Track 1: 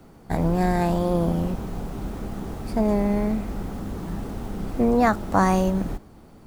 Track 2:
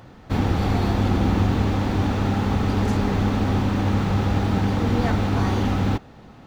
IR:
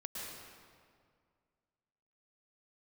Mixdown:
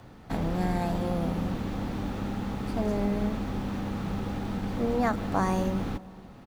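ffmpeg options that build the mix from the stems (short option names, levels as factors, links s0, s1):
-filter_complex "[0:a]volume=0.355,asplit=2[s0][s1];[s1]volume=0.224[s2];[1:a]acrossover=split=140|470[s3][s4][s5];[s3]acompressor=threshold=0.0178:ratio=4[s6];[s4]acompressor=threshold=0.0355:ratio=4[s7];[s5]acompressor=threshold=0.0158:ratio=4[s8];[s6][s7][s8]amix=inputs=3:normalize=0,volume=-1,adelay=0.4,volume=0.562[s9];[2:a]atrim=start_sample=2205[s10];[s2][s10]afir=irnorm=-1:irlink=0[s11];[s0][s9][s11]amix=inputs=3:normalize=0"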